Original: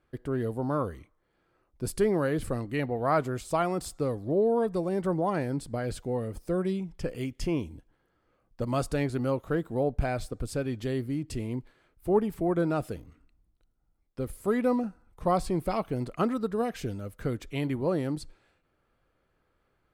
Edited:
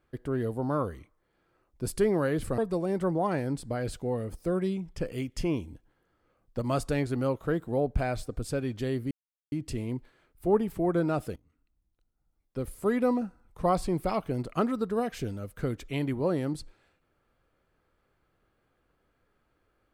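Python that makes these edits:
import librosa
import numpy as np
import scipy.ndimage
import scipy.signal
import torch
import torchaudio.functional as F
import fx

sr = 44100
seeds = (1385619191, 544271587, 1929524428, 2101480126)

y = fx.edit(x, sr, fx.cut(start_s=2.58, length_s=2.03),
    fx.insert_silence(at_s=11.14, length_s=0.41),
    fx.fade_in_from(start_s=12.98, length_s=1.28, floor_db=-20.0), tone=tone)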